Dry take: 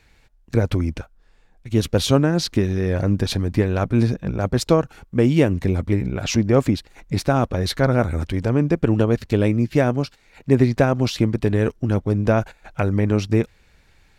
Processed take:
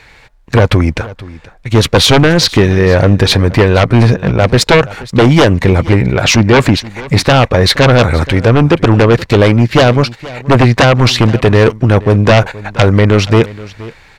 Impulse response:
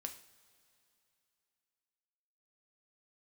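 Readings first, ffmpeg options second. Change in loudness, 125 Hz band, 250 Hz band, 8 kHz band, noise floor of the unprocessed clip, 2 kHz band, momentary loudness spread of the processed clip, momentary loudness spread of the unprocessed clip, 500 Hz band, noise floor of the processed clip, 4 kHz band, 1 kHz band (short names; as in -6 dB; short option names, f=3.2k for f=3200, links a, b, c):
+11.0 dB, +11.0 dB, +8.5 dB, +12.5 dB, -57 dBFS, +16.5 dB, 7 LU, 7 LU, +11.0 dB, -42 dBFS, +16.5 dB, +14.0 dB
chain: -filter_complex "[0:a]equalizer=f=125:t=o:w=1:g=6,equalizer=f=500:t=o:w=1:g=7,equalizer=f=1k:t=o:w=1:g=9,equalizer=f=2k:t=o:w=1:g=9,equalizer=f=4k:t=o:w=1:g=6,equalizer=f=8k:t=o:w=1:g=3,aeval=exprs='1.88*sin(PI/2*3.98*val(0)/1.88)':c=same,asplit=2[a][b];[b]aecho=0:1:475:0.112[c];[a][c]amix=inputs=2:normalize=0,volume=-7.5dB"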